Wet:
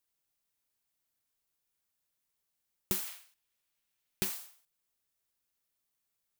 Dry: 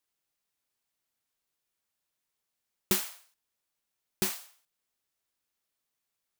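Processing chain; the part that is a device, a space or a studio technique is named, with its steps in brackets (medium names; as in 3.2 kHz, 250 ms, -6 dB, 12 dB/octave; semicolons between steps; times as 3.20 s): 3.07–4.25 s: peaking EQ 2.6 kHz +6.5 dB 1.5 oct; ASMR close-microphone chain (bass shelf 150 Hz +6 dB; compression 4:1, threshold -29 dBFS, peak gain reduction 7.5 dB; treble shelf 8.7 kHz +6.5 dB); trim -3 dB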